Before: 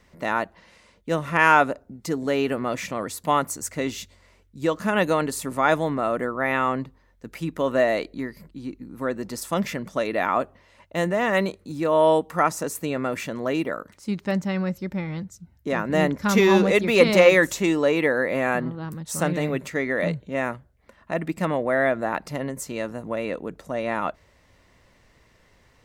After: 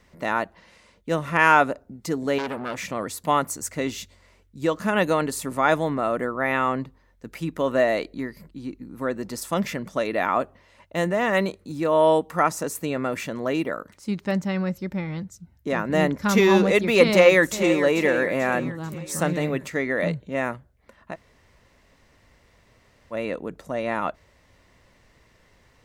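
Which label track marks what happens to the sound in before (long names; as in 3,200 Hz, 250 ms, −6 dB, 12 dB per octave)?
2.380000	2.890000	saturating transformer saturates under 1,800 Hz
17.080000	17.820000	delay throw 440 ms, feedback 50%, level −10.5 dB
21.130000	23.130000	fill with room tone, crossfade 0.06 s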